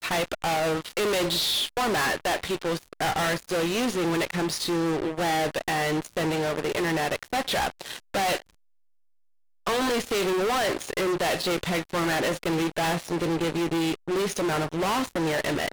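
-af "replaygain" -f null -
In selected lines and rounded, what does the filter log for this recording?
track_gain = +8.3 dB
track_peak = 0.062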